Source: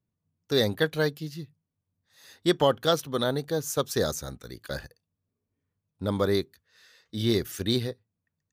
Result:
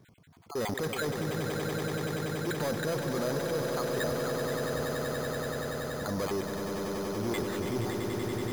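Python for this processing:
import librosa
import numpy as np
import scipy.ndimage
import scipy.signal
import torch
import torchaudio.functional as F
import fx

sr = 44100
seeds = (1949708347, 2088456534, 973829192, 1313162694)

p1 = fx.spec_dropout(x, sr, seeds[0], share_pct=32)
p2 = fx.high_shelf(p1, sr, hz=3700.0, db=-10.0)
p3 = fx.transient(p2, sr, attack_db=-4, sustain_db=11)
p4 = np.clip(10.0 ** (27.0 / 20.0) * p3, -1.0, 1.0) / 10.0 ** (27.0 / 20.0)
p5 = fx.low_shelf(p4, sr, hz=93.0, db=-10.5)
p6 = np.repeat(scipy.signal.resample_poly(p5, 1, 8), 8)[:len(p5)]
p7 = p6 + fx.echo_swell(p6, sr, ms=95, loudest=8, wet_db=-9.5, dry=0)
p8 = fx.env_flatten(p7, sr, amount_pct=50)
y = F.gain(torch.from_numpy(p8), -2.5).numpy()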